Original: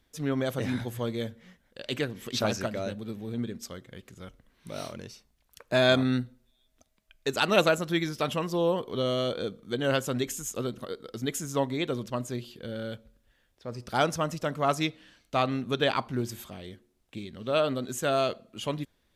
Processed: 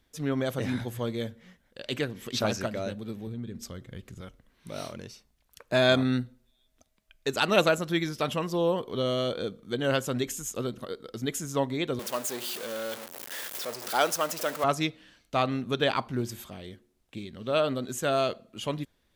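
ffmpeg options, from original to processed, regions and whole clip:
ffmpeg -i in.wav -filter_complex "[0:a]asettb=1/sr,asplit=3[link_01][link_02][link_03];[link_01]atrim=end=3.274[link_04];[link_02]atrim=start=3.27:end=4.21,asetpts=PTS-STARTPTS,afade=type=in:duration=0.004:curve=qsin,afade=type=out:start_time=0.936:duration=0.004:curve=qsin,lowshelf=frequency=160:gain=11,acompressor=threshold=-35dB:ratio=3:attack=3.2:release=140:knee=1:detection=peak[link_05];[link_03]atrim=start=4.206[link_06];[link_04][link_05]acrossfade=duration=0.004:curve1=hsin:curve2=qsin[link_07];[link_07][link_06]acrossfade=duration=0.004:curve1=qsin:curve2=hsin,asettb=1/sr,asplit=3[link_08][link_09][link_10];[link_08]atrim=end=11.994[link_11];[link_09]atrim=start=11.99:end=14.64,asetpts=PTS-STARTPTS,afade=type=in:duration=0.004:curve=qsin,afade=type=out:start_time=2.646:duration=0.004:curve=qsin,aeval=exprs='val(0)+0.5*0.0251*sgn(val(0))':channel_layout=same,highpass=410,highshelf=frequency=9700:gain=9.5[link_12];[link_10]atrim=start=14.636[link_13];[link_11][link_12]acrossfade=duration=0.004:curve1=hsin:curve2=qsin[link_14];[link_14][link_13]acrossfade=duration=0.004:curve1=qsin:curve2=hsin" out.wav

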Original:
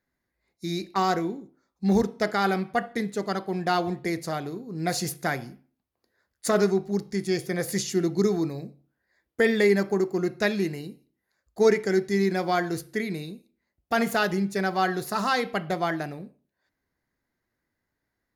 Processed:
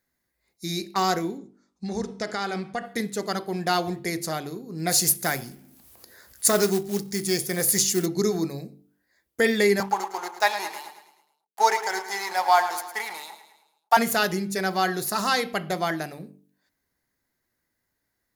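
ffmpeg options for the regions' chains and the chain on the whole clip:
ffmpeg -i in.wav -filter_complex "[0:a]asettb=1/sr,asplit=3[link_01][link_02][link_03];[link_01]atrim=end=1.384[link_04];[link_02]atrim=start=1.38:end=2.85,asetpts=PTS-STARTPTS,afade=type=in:duration=0.004:curve=qsin,afade=type=out:start_time=1.466:duration=0.004:curve=qsin,lowpass=frequency=8700:width=0.5412,lowpass=frequency=8700:width=1.3066,acompressor=threshold=-27dB:ratio=2.5:attack=3.2:release=140:knee=1:detection=peak[link_05];[link_03]atrim=start=2.846[link_06];[link_04][link_05]acrossfade=duration=0.004:curve1=hsin:curve2=qsin[link_07];[link_07][link_06]acrossfade=duration=0.004:curve1=qsin:curve2=hsin,asettb=1/sr,asplit=3[link_08][link_09][link_10];[link_08]atrim=end=4.914[link_11];[link_09]atrim=start=4.91:end=8.06,asetpts=PTS-STARTPTS,afade=type=in:duration=0.004:curve=qsin,afade=type=out:start_time=3.146:duration=0.004:curve=qsin,equalizer=frequency=12000:width=0.56:gain=5.5,acompressor=mode=upward:threshold=-37dB:ratio=2.5:attack=3.2:release=140:knee=2.83:detection=peak,acrusher=bits=5:mode=log:mix=0:aa=0.000001[link_12];[link_10]atrim=start=8.056[link_13];[link_11][link_12]acrossfade=duration=0.004:curve1=hsin:curve2=qsin[link_14];[link_14][link_13]acrossfade=duration=0.004:curve1=qsin:curve2=hsin,asettb=1/sr,asplit=3[link_15][link_16][link_17];[link_15]atrim=end=9.804[link_18];[link_16]atrim=start=9.8:end=13.97,asetpts=PTS-STARTPTS,afade=type=in:duration=0.004:curve=qsin,afade=type=out:start_time=4.166:duration=0.004:curve=qsin,aeval=exprs='sgn(val(0))*max(abs(val(0))-0.00944,0)':channel_layout=same,highpass=frequency=860:width_type=q:width=8.4,aecho=1:1:108|216|324|432|540:0.266|0.136|0.0692|0.0353|0.018,atrim=end_sample=183897[link_19];[link_17]atrim=start=13.966[link_20];[link_18][link_19]acrossfade=duration=0.004:curve1=hsin:curve2=qsin[link_21];[link_21][link_20]acrossfade=duration=0.004:curve1=qsin:curve2=hsin,highshelf=frequency=4600:gain=11.5,bandreject=frequency=48.67:width_type=h:width=4,bandreject=frequency=97.34:width_type=h:width=4,bandreject=frequency=146.01:width_type=h:width=4,bandreject=frequency=194.68:width_type=h:width=4,bandreject=frequency=243.35:width_type=h:width=4,bandreject=frequency=292.02:width_type=h:width=4,bandreject=frequency=340.69:width_type=h:width=4,bandreject=frequency=389.36:width_type=h:width=4,bandreject=frequency=438.03:width_type=h:width=4" out.wav

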